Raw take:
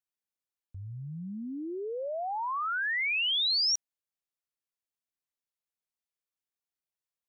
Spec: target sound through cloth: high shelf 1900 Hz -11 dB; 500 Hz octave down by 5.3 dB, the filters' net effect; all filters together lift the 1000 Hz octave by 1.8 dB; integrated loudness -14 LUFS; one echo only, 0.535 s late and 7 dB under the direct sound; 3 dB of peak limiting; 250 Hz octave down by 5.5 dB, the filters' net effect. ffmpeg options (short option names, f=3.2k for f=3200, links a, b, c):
-af "equalizer=f=250:t=o:g=-5.5,equalizer=f=500:t=o:g=-7,equalizer=f=1k:t=o:g=7.5,alimiter=level_in=2dB:limit=-24dB:level=0:latency=1,volume=-2dB,highshelf=f=1.9k:g=-11,aecho=1:1:535:0.447,volume=21.5dB"